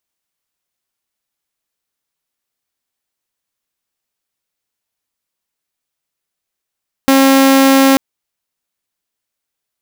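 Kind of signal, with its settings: tone saw 270 Hz -4 dBFS 0.89 s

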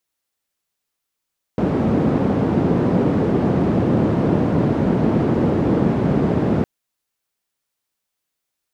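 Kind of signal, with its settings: noise band 130–280 Hz, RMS -17.5 dBFS 5.06 s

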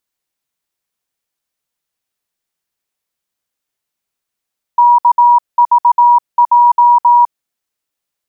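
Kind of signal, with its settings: Morse "KVJ" 18 wpm 961 Hz -4 dBFS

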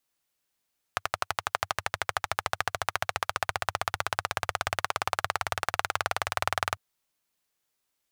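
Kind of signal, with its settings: single-cylinder engine model, changing speed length 5.80 s, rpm 1400, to 2400, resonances 96/780/1200 Hz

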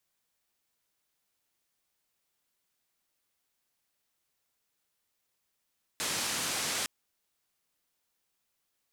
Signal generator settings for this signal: noise band 99–8700 Hz, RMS -33 dBFS 0.86 s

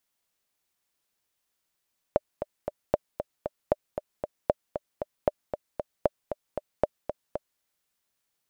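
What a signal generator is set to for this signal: metronome 231 bpm, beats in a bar 3, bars 7, 597 Hz, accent 9 dB -7.5 dBFS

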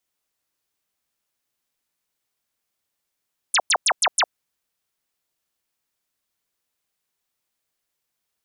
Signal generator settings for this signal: burst of laser zaps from 11 kHz, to 550 Hz, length 0.06 s sine, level -15 dB, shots 5, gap 0.10 s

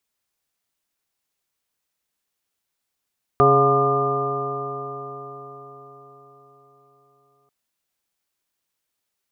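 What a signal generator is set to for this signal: stretched partials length 4.09 s, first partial 136 Hz, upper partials -6/5.5/-5.5/2/-13.5/-8.5/6 dB, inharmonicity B 0.0036, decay 4.81 s, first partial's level -20.5 dB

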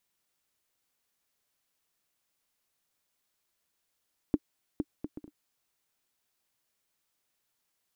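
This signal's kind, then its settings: bouncing ball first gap 0.46 s, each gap 0.53, 298 Hz, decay 46 ms -13.5 dBFS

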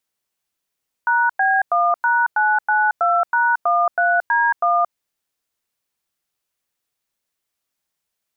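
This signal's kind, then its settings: DTMF "#B1#992#13D1", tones 225 ms, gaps 98 ms, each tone -16.5 dBFS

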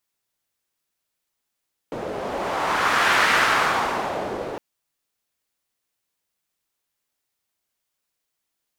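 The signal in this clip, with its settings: wind-like swept noise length 2.66 s, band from 490 Hz, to 1.6 kHz, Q 1.5, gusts 1, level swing 12 dB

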